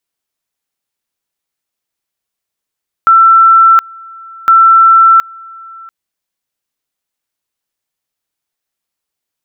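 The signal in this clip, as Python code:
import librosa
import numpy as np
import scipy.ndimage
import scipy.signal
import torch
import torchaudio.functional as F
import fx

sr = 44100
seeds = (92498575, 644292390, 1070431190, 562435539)

y = fx.two_level_tone(sr, hz=1340.0, level_db=-2.0, drop_db=26.5, high_s=0.72, low_s=0.69, rounds=2)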